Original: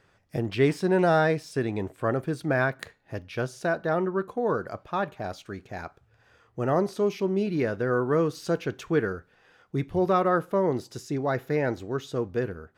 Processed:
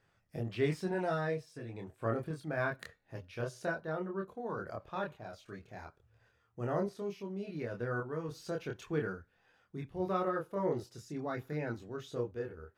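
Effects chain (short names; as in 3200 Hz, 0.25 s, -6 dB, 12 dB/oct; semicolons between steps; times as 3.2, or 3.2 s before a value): random-step tremolo 3.5 Hz; 0.91–1.74 notch comb 200 Hz; chorus voices 4, 0.25 Hz, delay 26 ms, depth 1.2 ms; gain -5 dB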